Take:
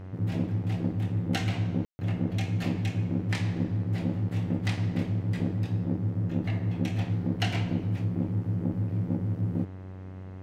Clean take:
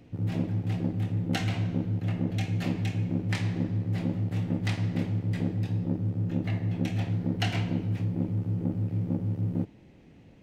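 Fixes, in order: de-hum 93.9 Hz, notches 23; room tone fill 1.85–1.99 s

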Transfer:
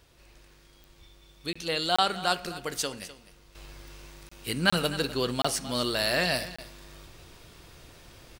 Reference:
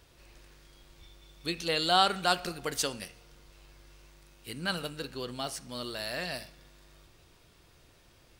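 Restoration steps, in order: de-click; interpolate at 1.53/1.96/4.29/4.70/5.42/6.56 s, 25 ms; inverse comb 253 ms -16 dB; trim 0 dB, from 3.55 s -9.5 dB

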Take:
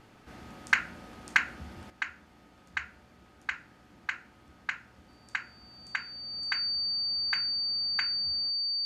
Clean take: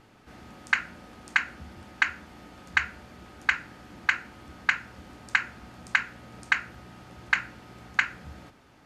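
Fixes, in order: clip repair -10.5 dBFS; band-stop 4.6 kHz, Q 30; trim 0 dB, from 1.90 s +10 dB

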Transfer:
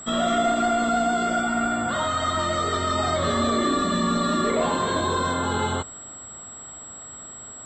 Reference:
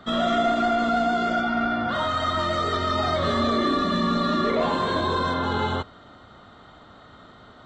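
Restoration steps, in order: band-stop 7.7 kHz, Q 30

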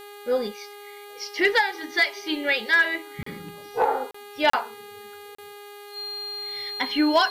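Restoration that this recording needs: de-hum 409.6 Hz, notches 11; band-stop 4.2 kHz, Q 30; interpolate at 3.23/4.11/4.50/5.35 s, 34 ms; noise reduction 26 dB, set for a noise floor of -43 dBFS

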